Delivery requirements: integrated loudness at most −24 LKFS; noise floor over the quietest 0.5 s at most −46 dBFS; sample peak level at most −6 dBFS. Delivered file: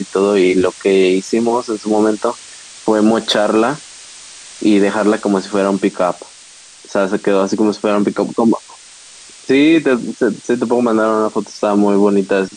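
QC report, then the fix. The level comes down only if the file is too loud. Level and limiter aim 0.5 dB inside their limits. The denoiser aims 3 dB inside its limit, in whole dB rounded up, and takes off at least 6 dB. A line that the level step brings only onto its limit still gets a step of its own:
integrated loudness −15.0 LKFS: out of spec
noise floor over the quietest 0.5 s −40 dBFS: out of spec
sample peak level −2.5 dBFS: out of spec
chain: level −9.5 dB

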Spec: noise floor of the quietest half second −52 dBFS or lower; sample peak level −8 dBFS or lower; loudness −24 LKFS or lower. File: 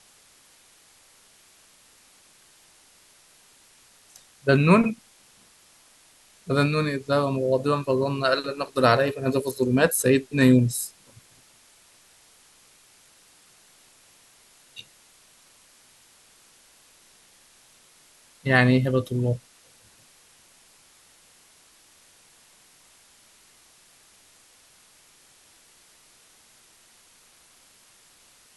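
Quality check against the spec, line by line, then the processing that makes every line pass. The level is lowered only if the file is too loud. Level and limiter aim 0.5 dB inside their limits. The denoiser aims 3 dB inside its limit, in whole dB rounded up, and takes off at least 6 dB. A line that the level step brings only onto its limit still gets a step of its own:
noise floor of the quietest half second −56 dBFS: in spec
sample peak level −2.5 dBFS: out of spec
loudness −22.5 LKFS: out of spec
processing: level −2 dB
brickwall limiter −8.5 dBFS

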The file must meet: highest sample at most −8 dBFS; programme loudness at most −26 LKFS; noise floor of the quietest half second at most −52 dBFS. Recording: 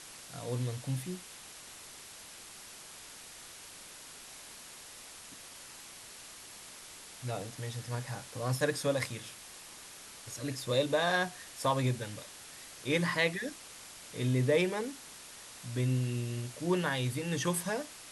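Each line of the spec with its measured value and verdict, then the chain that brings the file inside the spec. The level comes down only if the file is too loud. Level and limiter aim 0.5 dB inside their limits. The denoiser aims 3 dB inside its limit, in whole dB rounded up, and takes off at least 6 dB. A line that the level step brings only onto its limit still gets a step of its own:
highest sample −16.0 dBFS: in spec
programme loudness −33.5 LKFS: in spec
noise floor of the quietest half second −50 dBFS: out of spec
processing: broadband denoise 6 dB, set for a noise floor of −50 dBFS

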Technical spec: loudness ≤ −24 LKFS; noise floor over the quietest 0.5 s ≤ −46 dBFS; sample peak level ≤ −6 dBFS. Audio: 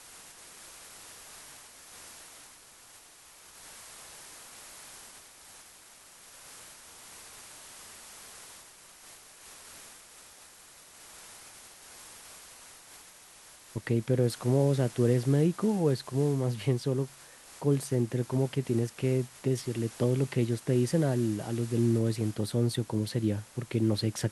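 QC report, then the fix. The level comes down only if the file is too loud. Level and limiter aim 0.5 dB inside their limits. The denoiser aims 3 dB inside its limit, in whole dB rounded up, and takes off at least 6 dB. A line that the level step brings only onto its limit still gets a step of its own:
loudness −29.0 LKFS: in spec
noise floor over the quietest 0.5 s −54 dBFS: in spec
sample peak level −13.5 dBFS: in spec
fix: no processing needed

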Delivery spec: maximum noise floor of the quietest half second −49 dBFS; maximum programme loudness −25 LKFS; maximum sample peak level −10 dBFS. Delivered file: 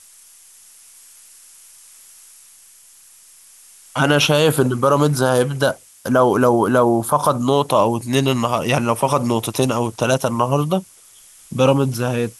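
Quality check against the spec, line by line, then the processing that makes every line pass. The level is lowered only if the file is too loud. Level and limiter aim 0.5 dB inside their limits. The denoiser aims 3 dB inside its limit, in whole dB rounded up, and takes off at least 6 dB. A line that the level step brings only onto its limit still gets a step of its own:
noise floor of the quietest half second −47 dBFS: out of spec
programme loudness −17.5 LKFS: out of spec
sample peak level −3.0 dBFS: out of spec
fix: level −8 dB

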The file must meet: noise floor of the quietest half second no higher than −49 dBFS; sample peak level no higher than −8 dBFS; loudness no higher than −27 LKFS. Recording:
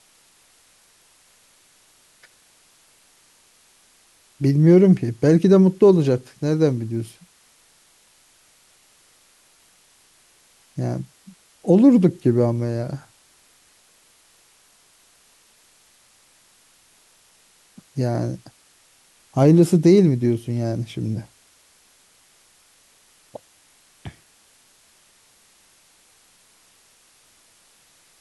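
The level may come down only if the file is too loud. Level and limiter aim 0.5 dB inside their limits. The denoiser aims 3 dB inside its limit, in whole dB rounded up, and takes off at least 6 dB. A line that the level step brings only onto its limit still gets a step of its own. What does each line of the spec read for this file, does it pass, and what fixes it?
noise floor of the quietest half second −57 dBFS: in spec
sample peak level −4.0 dBFS: out of spec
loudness −18.5 LKFS: out of spec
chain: level −9 dB

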